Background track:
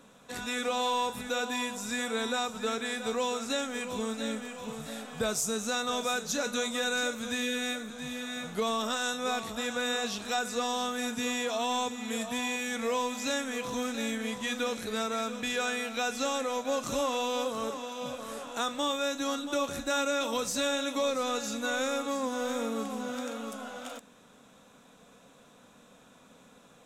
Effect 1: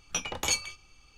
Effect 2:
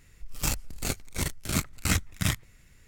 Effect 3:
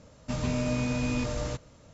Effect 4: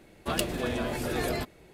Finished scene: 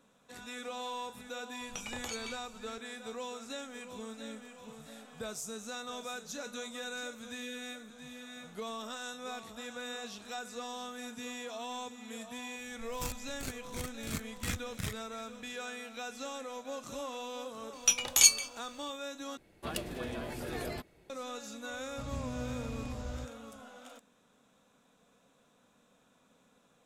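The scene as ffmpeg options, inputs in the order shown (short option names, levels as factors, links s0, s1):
-filter_complex "[1:a]asplit=2[s0][s1];[0:a]volume=0.299[s2];[s0]acompressor=threshold=0.0158:ratio=6:attack=3.2:release=140:knee=1:detection=peak[s3];[2:a]acontrast=34[s4];[s1]crystalizer=i=9:c=0[s5];[3:a]equalizer=f=69:w=1.5:g=13[s6];[s2]asplit=2[s7][s8];[s7]atrim=end=19.374[s9];[4:a]atrim=end=1.73,asetpts=PTS-STARTPTS,volume=0.376[s10];[s8]atrim=start=21.096[s11];[s3]atrim=end=1.17,asetpts=PTS-STARTPTS,volume=0.794,afade=t=in:d=0.004:c=hsin,afade=t=out:st=1.166:d=0.004:c=hsin,adelay=1610[s12];[s4]atrim=end=2.87,asetpts=PTS-STARTPTS,volume=0.15,afade=t=in:d=0.004:c=hsin,afade=t=out:st=2.866:d=0.004:c=hsin,adelay=12580[s13];[s5]atrim=end=1.17,asetpts=PTS-STARTPTS,volume=0.316,afade=t=in:d=0.004:c=hsin,afade=t=out:st=1.166:d=0.004:c=hsin,adelay=17730[s14];[s6]atrim=end=1.93,asetpts=PTS-STARTPTS,volume=0.188,afade=t=in:d=0.004:c=hsin,afade=t=out:st=1.926:d=0.004:c=hsin,adelay=21690[s15];[s9][s10]acrossfade=d=0.004:c1=hsin:c2=hsin[s16];[s16][s11]acrossfade=d=0.004:c1=hsin:c2=hsin[s17];[s17][s12][s13][s14][s15]amix=inputs=5:normalize=0"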